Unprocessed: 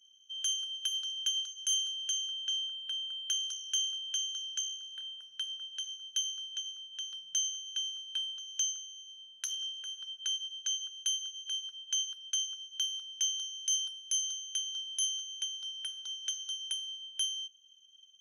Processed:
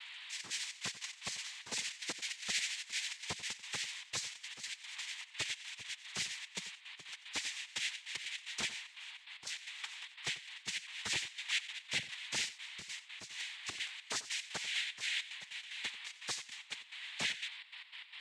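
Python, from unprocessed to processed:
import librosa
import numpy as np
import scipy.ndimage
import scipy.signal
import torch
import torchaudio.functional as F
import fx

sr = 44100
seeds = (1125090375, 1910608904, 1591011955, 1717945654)

y = fx.pitch_glide(x, sr, semitones=4.5, runs='ending unshifted')
y = fx.highpass(y, sr, hz=1300.0, slope=6)
y = fx.peak_eq(y, sr, hz=5500.0, db=-4.5, octaves=1.9)
y = y + 0.56 * np.pad(y, (int(6.4 * sr / 1000.0), 0))[:len(y)]
y = fx.hpss(y, sr, part='harmonic', gain_db=-10)
y = (np.mod(10.0 ** (39.0 / 20.0) * y + 1.0, 2.0) - 1.0) / 10.0 ** (39.0 / 20.0)
y = y + 10.0 ** (-60.0 / 20.0) * np.sin(2.0 * np.pi * 2400.0 * np.arange(len(y)) / sr)
y = fx.step_gate(y, sr, bpm=149, pattern='xxxx.xx.x.x.', floor_db=-12.0, edge_ms=4.5)
y = fx.noise_vocoder(y, sr, seeds[0], bands=6)
y = fx.high_shelf(y, sr, hz=4200.0, db=-7.5)
y = y + 10.0 ** (-16.0 / 20.0) * np.pad(y, (int(91 * sr / 1000.0), 0))[:len(y)]
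y = F.gain(torch.from_numpy(y), 15.0).numpy()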